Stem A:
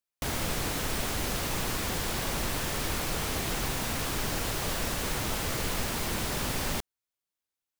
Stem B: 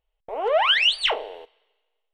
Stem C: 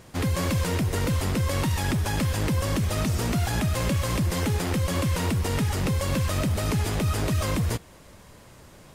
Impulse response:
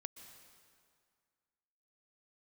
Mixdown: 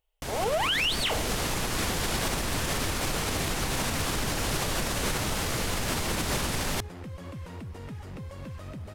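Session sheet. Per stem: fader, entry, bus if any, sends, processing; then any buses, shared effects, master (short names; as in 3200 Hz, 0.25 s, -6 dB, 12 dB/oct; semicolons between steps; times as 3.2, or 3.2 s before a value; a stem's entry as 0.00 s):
-5.0 dB, 0.00 s, no send, companded quantiser 4-bit; LPF 12000 Hz 12 dB/oct; AGC gain up to 9.5 dB
-1.5 dB, 0.00 s, no send, high shelf 4700 Hz +9.5 dB
-14.5 dB, 2.30 s, no send, high shelf 3800 Hz -11.5 dB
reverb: off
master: limiter -18.5 dBFS, peak gain reduction 11 dB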